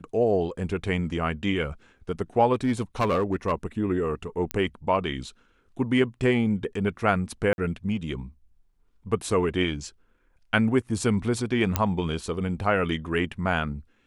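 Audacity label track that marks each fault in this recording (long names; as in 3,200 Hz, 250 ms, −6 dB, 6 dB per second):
2.530000	3.530000	clipping −18.5 dBFS
4.510000	4.510000	click −12 dBFS
7.530000	7.580000	drop-out 51 ms
11.760000	11.760000	click −6 dBFS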